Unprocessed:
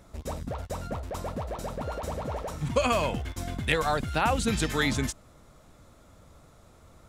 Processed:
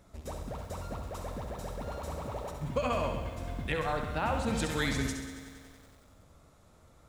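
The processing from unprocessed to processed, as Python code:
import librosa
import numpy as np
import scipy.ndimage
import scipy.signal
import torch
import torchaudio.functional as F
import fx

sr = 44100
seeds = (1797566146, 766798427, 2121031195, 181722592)

y = fx.high_shelf(x, sr, hz=3300.0, db=-10.0, at=(2.51, 4.55))
y = fx.echo_feedback(y, sr, ms=67, feedback_pct=56, wet_db=-7.0)
y = fx.echo_crushed(y, sr, ms=93, feedback_pct=80, bits=8, wet_db=-13)
y = y * librosa.db_to_amplitude(-6.0)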